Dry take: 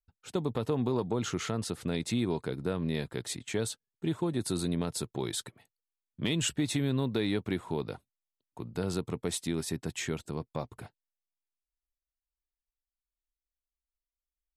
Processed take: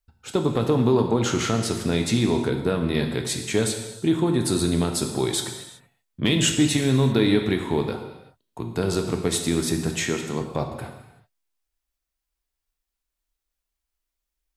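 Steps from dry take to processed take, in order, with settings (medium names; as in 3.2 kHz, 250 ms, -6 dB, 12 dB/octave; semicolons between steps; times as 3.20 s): 9.96–10.41 s: high-pass 150 Hz; gated-style reverb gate 410 ms falling, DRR 3.5 dB; trim +8.5 dB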